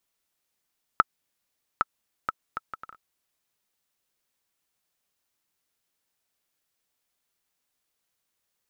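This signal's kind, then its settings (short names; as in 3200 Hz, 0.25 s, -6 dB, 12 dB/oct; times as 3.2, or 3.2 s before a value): bouncing ball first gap 0.81 s, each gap 0.59, 1310 Hz, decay 28 ms -4 dBFS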